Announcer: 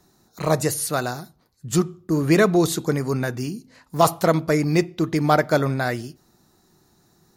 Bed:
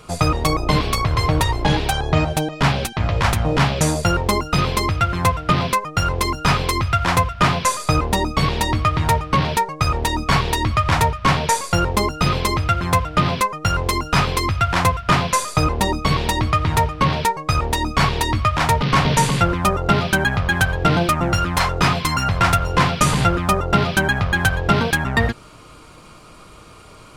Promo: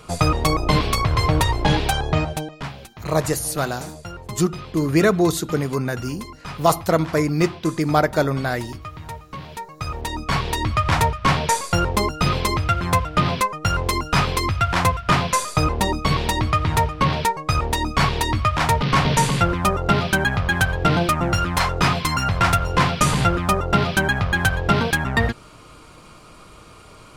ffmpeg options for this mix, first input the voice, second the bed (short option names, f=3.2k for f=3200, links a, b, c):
-filter_complex "[0:a]adelay=2650,volume=0dB[a];[1:a]volume=15dB,afade=t=out:st=1.94:d=0.76:silence=0.149624,afade=t=in:st=9.47:d=1.41:silence=0.16788[b];[a][b]amix=inputs=2:normalize=0"